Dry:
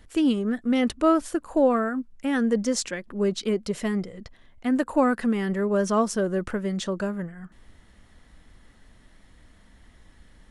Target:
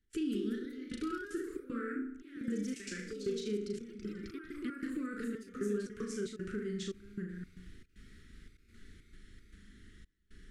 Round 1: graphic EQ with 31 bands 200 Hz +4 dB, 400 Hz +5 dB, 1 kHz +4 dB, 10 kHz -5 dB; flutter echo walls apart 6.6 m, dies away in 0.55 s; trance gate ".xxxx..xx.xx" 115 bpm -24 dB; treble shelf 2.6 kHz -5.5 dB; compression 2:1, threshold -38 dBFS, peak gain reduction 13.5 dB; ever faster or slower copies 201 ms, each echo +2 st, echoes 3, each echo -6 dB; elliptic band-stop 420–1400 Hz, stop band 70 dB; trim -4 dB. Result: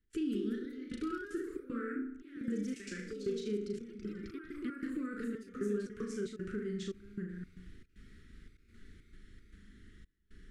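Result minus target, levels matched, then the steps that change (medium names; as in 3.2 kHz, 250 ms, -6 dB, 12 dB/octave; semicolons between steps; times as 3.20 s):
4 kHz band -3.5 dB
remove: treble shelf 2.6 kHz -5.5 dB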